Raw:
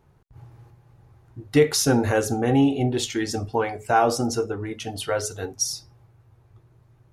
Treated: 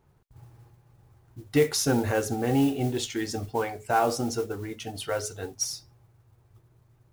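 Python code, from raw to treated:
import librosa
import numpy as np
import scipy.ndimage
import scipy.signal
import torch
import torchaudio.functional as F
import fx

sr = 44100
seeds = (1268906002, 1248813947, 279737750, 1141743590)

y = fx.mod_noise(x, sr, seeds[0], snr_db=22)
y = F.gain(torch.from_numpy(y), -4.5).numpy()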